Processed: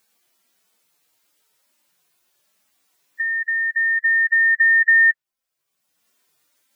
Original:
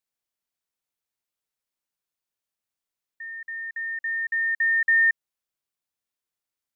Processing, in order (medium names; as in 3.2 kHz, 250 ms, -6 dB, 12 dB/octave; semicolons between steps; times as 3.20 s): harmonic-percussive separation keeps harmonic; dynamic bell 1.7 kHz, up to +4 dB, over -31 dBFS, Q 0.84; three bands compressed up and down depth 70%; trim +4.5 dB